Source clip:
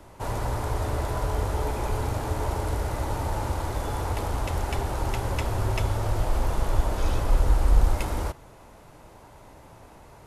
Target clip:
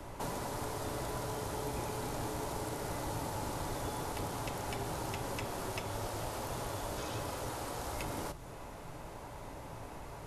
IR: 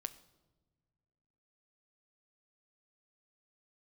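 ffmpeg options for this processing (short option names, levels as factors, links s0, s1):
-filter_complex "[1:a]atrim=start_sample=2205,atrim=end_sample=3087[s0];[0:a][s0]afir=irnorm=-1:irlink=0,acrossover=split=300|3300[s1][s2][s3];[s1]acompressor=threshold=0.0141:ratio=4[s4];[s2]acompressor=threshold=0.00501:ratio=4[s5];[s3]acompressor=threshold=0.00251:ratio=4[s6];[s4][s5][s6]amix=inputs=3:normalize=0,afftfilt=real='re*lt(hypot(re,im),0.0891)':imag='im*lt(hypot(re,im),0.0891)':win_size=1024:overlap=0.75,volume=1.78"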